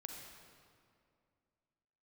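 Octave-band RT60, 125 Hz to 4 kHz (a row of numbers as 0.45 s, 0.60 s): 2.5 s, 2.7 s, 2.5 s, 2.2 s, 1.9 s, 1.6 s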